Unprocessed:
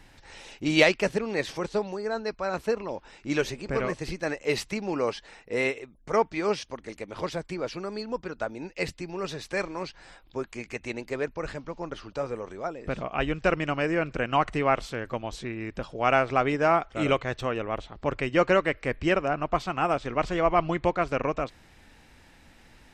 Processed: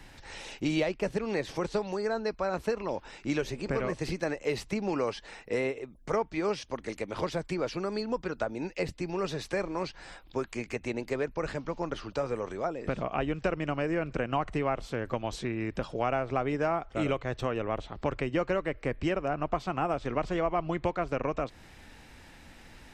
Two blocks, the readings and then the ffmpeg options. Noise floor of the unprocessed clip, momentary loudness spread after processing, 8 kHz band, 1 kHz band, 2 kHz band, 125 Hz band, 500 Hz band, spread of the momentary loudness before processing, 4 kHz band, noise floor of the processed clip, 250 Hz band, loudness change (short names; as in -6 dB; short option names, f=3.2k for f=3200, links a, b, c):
-56 dBFS, 7 LU, -4.0 dB, -5.0 dB, -7.0 dB, -1.0 dB, -3.5 dB, 12 LU, -6.0 dB, -53 dBFS, -2.0 dB, -4.0 dB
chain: -filter_complex "[0:a]acrossover=split=90|990[a][b][c];[a]acompressor=threshold=-44dB:ratio=4[d];[b]acompressor=threshold=-31dB:ratio=4[e];[c]acompressor=threshold=-42dB:ratio=4[f];[d][e][f]amix=inputs=3:normalize=0,volume=3dB"